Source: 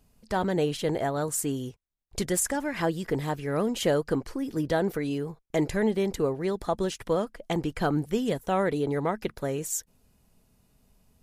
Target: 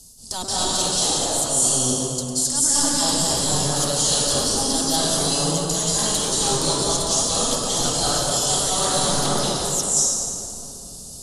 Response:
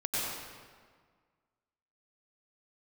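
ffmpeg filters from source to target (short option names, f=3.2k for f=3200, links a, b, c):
-filter_complex "[0:a]acrossover=split=700|2800[a][b][c];[a]aeval=exprs='0.0224*(abs(mod(val(0)/0.0224+3,4)-2)-1)':c=same[d];[d][b][c]amix=inputs=3:normalize=0,aexciter=amount=10.9:drive=6.8:freq=3.4k,lowpass=8.9k,equalizer=f=2.1k:w=0.88:g=-13.5,areverse,acompressor=threshold=-35dB:ratio=6,areverse[e];[1:a]atrim=start_sample=2205,asetrate=22491,aresample=44100[f];[e][f]afir=irnorm=-1:irlink=0,volume=6.5dB"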